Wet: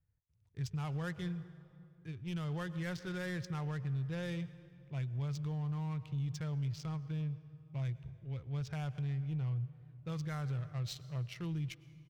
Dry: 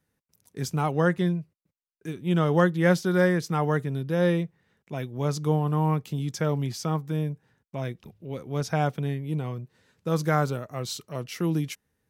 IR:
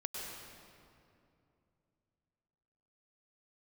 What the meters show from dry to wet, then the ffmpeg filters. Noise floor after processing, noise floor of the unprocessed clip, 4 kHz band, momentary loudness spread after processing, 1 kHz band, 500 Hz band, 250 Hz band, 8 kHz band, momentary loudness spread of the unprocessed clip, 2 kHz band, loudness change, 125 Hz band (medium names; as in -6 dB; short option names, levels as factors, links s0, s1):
-66 dBFS, -79 dBFS, -11.0 dB, 8 LU, -19.5 dB, -21.0 dB, -14.0 dB, -15.5 dB, 15 LU, -15.0 dB, -12.5 dB, -8.5 dB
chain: -filter_complex "[0:a]adynamicsmooth=sensitivity=7.5:basefreq=1500,firequalizer=gain_entry='entry(110,0);entry(200,-23);entry(2500,-10)':delay=0.05:min_phase=1,asplit=2[s0][s1];[1:a]atrim=start_sample=2205[s2];[s1][s2]afir=irnorm=-1:irlink=0,volume=0.158[s3];[s0][s3]amix=inputs=2:normalize=0,alimiter=level_in=3.16:limit=0.0631:level=0:latency=1:release=74,volume=0.316,volume=1.41"